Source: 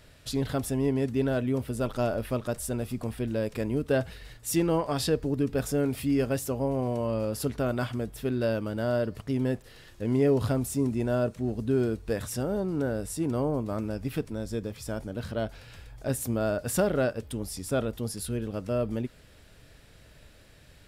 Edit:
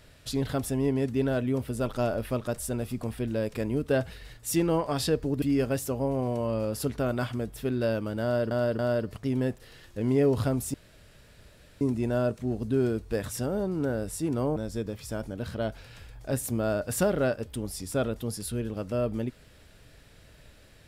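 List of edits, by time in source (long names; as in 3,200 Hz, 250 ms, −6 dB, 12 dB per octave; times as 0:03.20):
0:05.42–0:06.02: remove
0:08.83–0:09.11: repeat, 3 plays
0:10.78: splice in room tone 1.07 s
0:13.53–0:14.33: remove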